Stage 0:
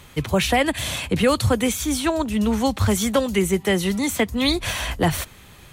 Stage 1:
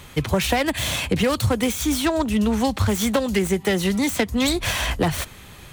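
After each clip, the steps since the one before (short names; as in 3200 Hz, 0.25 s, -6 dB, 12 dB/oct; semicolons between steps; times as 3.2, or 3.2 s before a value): self-modulated delay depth 0.098 ms; compressor, threshold -20 dBFS, peak gain reduction 7 dB; gain +3.5 dB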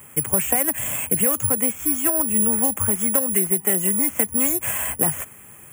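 HPF 110 Hz 12 dB/oct; careless resampling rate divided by 4×, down filtered, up zero stuff; Butterworth band-stop 4200 Hz, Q 1.2; gain -5 dB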